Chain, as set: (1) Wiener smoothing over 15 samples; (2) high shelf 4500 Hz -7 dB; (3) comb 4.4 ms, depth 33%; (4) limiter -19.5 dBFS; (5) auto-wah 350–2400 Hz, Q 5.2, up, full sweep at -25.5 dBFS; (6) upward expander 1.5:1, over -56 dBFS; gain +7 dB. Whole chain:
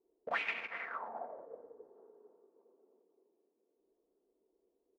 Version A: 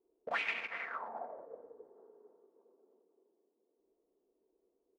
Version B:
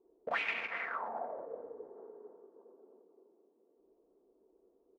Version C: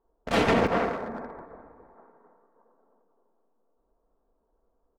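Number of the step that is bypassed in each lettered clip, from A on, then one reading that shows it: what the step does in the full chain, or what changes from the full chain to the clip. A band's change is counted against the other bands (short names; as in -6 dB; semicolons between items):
2, 4 kHz band +2.0 dB; 6, crest factor change -2.5 dB; 5, 250 Hz band +17.5 dB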